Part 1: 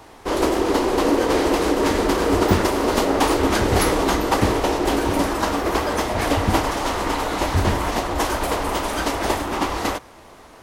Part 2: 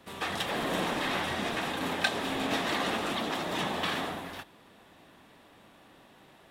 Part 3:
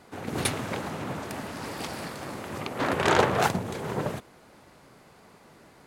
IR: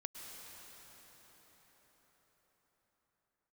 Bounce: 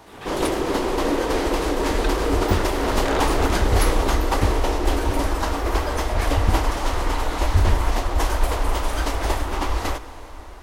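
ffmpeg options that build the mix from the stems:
-filter_complex "[0:a]asubboost=boost=8.5:cutoff=58,volume=-5.5dB,asplit=2[link_01][link_02];[link_02]volume=-6.5dB[link_03];[1:a]volume=-6.5dB[link_04];[2:a]volume=-4.5dB[link_05];[3:a]atrim=start_sample=2205[link_06];[link_03][link_06]afir=irnorm=-1:irlink=0[link_07];[link_01][link_04][link_05][link_07]amix=inputs=4:normalize=0"

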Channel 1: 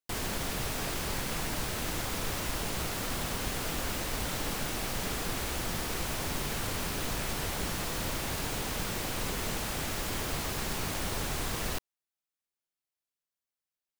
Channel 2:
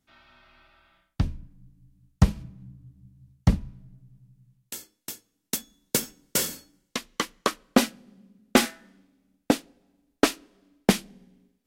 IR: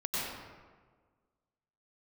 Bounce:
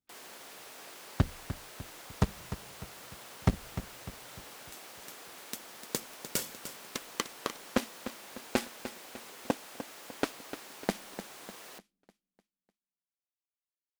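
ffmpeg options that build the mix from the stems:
-filter_complex "[0:a]highpass=400,volume=-13dB[link_01];[1:a]alimiter=limit=-12.5dB:level=0:latency=1:release=133,aeval=exprs='0.237*(cos(1*acos(clip(val(0)/0.237,-1,1)))-cos(1*PI/2))+0.0668*(cos(3*acos(clip(val(0)/0.237,-1,1)))-cos(3*PI/2))':channel_layout=same,volume=-0.5dB,asplit=2[link_02][link_03];[link_03]volume=-11.5dB,aecho=0:1:300|600|900|1200|1500|1800:1|0.45|0.202|0.0911|0.041|0.0185[link_04];[link_01][link_02][link_04]amix=inputs=3:normalize=0"

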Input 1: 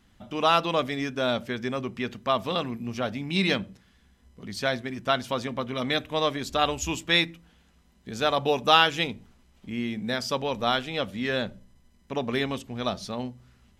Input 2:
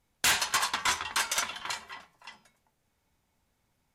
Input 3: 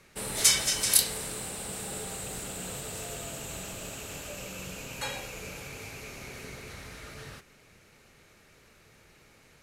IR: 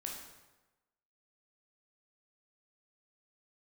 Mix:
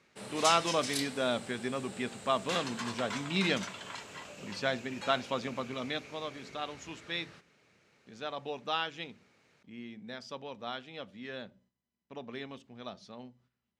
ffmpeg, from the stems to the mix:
-filter_complex "[0:a]agate=range=-9dB:threshold=-51dB:ratio=16:detection=peak,volume=-5dB,afade=type=out:start_time=5.48:duration=0.74:silence=0.334965[link_01];[1:a]alimiter=level_in=5dB:limit=-24dB:level=0:latency=1:release=292,volume=-5dB,adelay=2250,volume=-2dB[link_02];[2:a]volume=-7.5dB[link_03];[link_01][link_02][link_03]amix=inputs=3:normalize=0,highpass=130,lowpass=6000"

